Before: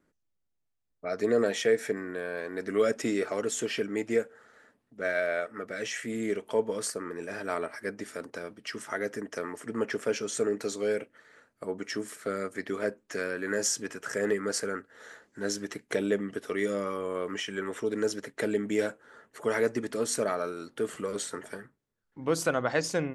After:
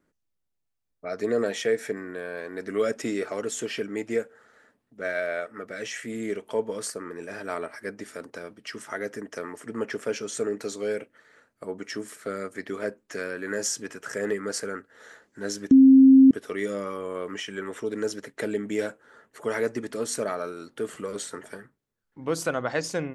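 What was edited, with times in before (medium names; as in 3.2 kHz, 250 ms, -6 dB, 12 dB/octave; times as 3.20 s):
15.71–16.31 s: bleep 266 Hz -9.5 dBFS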